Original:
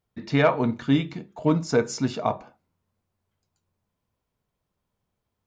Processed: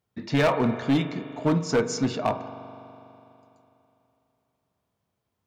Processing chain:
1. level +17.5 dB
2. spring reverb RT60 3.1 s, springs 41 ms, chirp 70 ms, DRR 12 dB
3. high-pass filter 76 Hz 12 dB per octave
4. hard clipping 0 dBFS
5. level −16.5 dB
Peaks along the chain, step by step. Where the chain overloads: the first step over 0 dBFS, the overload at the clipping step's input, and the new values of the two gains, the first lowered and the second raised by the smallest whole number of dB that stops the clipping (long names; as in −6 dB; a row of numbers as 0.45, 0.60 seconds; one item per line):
+9.5, +9.0, +9.5, 0.0, −16.5 dBFS
step 1, 9.5 dB
step 1 +7.5 dB, step 5 −6.5 dB